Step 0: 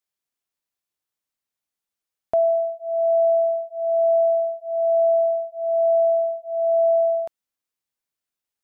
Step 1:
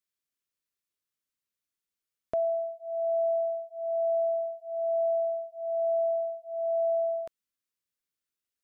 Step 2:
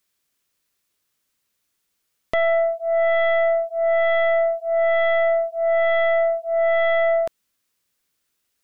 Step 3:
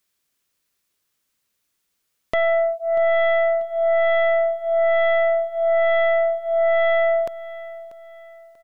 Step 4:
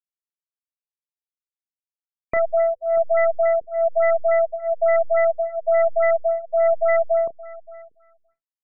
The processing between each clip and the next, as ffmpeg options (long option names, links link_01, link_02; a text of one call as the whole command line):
ffmpeg -i in.wav -af "equalizer=frequency=790:width=3.4:gain=-14,volume=-3dB" out.wav
ffmpeg -i in.wav -af "aeval=exprs='0.1*(cos(1*acos(clip(val(0)/0.1,-1,1)))-cos(1*PI/2))+0.0282*(cos(2*acos(clip(val(0)/0.1,-1,1)))-cos(2*PI/2))+0.0355*(cos(5*acos(clip(val(0)/0.1,-1,1)))-cos(5*PI/2))+0.00178*(cos(6*acos(clip(val(0)/0.1,-1,1)))-cos(6*PI/2))':channel_layout=same,volume=6.5dB" out.wav
ffmpeg -i in.wav -af "aecho=1:1:639|1278|1917:0.141|0.0537|0.0204" out.wav
ffmpeg -i in.wav -filter_complex "[0:a]aeval=exprs='sgn(val(0))*max(abs(val(0))-0.00944,0)':channel_layout=same,asplit=2[link_01][link_02];[link_02]adelay=30,volume=-11.5dB[link_03];[link_01][link_03]amix=inputs=2:normalize=0,afftfilt=real='re*lt(b*sr/1024,480*pow(2600/480,0.5+0.5*sin(2*PI*3.5*pts/sr)))':imag='im*lt(b*sr/1024,480*pow(2600/480,0.5+0.5*sin(2*PI*3.5*pts/sr)))':win_size=1024:overlap=0.75" out.wav